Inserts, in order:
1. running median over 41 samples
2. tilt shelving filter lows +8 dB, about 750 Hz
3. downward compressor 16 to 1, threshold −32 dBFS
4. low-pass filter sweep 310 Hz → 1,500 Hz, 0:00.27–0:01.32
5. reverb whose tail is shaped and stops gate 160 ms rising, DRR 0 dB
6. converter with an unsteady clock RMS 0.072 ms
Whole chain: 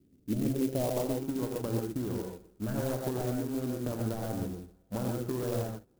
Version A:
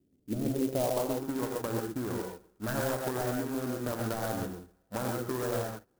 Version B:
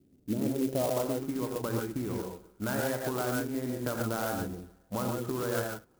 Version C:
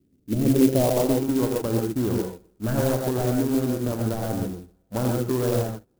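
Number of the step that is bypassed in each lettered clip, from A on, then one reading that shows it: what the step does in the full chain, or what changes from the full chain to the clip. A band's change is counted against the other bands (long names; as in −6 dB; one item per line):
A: 2, 125 Hz band −6.0 dB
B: 1, 2 kHz band +7.5 dB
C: 3, average gain reduction 8.0 dB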